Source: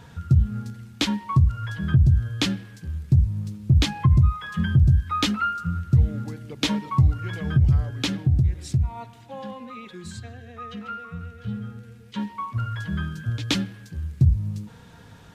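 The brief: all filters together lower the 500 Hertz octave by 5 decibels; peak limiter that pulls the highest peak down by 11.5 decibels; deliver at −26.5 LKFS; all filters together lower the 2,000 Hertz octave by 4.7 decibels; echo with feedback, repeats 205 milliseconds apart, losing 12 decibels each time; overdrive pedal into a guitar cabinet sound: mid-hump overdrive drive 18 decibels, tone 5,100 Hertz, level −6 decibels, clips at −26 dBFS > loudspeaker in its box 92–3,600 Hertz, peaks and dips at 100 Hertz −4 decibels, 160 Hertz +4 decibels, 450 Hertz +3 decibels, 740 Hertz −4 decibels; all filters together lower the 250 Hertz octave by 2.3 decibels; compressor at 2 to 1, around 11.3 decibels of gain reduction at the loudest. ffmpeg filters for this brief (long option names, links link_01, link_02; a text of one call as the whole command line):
ffmpeg -i in.wav -filter_complex "[0:a]equalizer=frequency=250:width_type=o:gain=-4.5,equalizer=frequency=500:width_type=o:gain=-6,equalizer=frequency=2000:width_type=o:gain=-6,acompressor=threshold=-35dB:ratio=2,alimiter=level_in=4dB:limit=-24dB:level=0:latency=1,volume=-4dB,aecho=1:1:205|410|615:0.251|0.0628|0.0157,asplit=2[link_01][link_02];[link_02]highpass=frequency=720:poles=1,volume=18dB,asoftclip=type=tanh:threshold=-26dB[link_03];[link_01][link_03]amix=inputs=2:normalize=0,lowpass=frequency=5100:poles=1,volume=-6dB,highpass=92,equalizer=frequency=100:width_type=q:width=4:gain=-4,equalizer=frequency=160:width_type=q:width=4:gain=4,equalizer=frequency=450:width_type=q:width=4:gain=3,equalizer=frequency=740:width_type=q:width=4:gain=-4,lowpass=frequency=3600:width=0.5412,lowpass=frequency=3600:width=1.3066,volume=10.5dB" out.wav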